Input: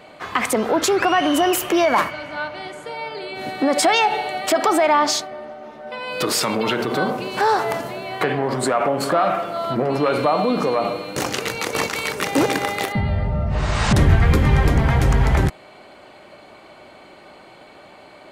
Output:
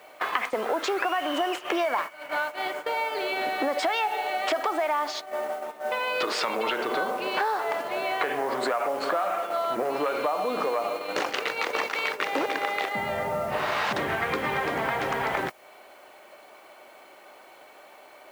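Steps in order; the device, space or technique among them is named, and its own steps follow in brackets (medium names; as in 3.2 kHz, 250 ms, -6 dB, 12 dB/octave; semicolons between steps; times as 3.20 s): baby monitor (band-pass 470–3400 Hz; compression 6:1, threshold -33 dBFS, peak gain reduction 18 dB; white noise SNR 23 dB; gate -38 dBFS, range -12 dB); trim +8 dB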